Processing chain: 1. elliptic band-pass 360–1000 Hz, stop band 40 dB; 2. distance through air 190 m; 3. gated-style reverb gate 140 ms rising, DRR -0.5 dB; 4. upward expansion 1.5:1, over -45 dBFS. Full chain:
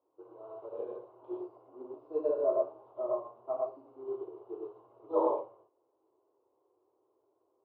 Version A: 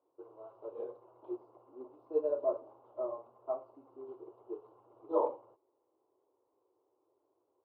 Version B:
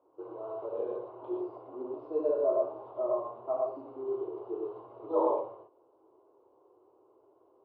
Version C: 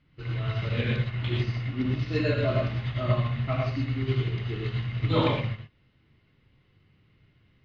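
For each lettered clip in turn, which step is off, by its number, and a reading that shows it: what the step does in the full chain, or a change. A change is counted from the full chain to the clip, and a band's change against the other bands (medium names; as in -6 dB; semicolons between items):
3, momentary loudness spread change +2 LU; 4, momentary loudness spread change -5 LU; 1, momentary loudness spread change -12 LU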